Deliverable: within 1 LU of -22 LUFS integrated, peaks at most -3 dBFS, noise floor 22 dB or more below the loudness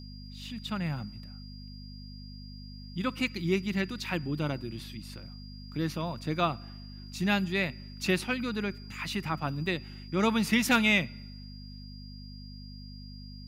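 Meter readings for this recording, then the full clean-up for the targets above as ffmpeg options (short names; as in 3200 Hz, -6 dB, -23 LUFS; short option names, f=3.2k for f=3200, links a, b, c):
hum 50 Hz; harmonics up to 250 Hz; hum level -42 dBFS; steady tone 4800 Hz; tone level -51 dBFS; loudness -30.5 LUFS; peak -12.0 dBFS; loudness target -22.0 LUFS
-> -af "bandreject=f=50:t=h:w=4,bandreject=f=100:t=h:w=4,bandreject=f=150:t=h:w=4,bandreject=f=200:t=h:w=4,bandreject=f=250:t=h:w=4"
-af "bandreject=f=4.8k:w=30"
-af "volume=8.5dB"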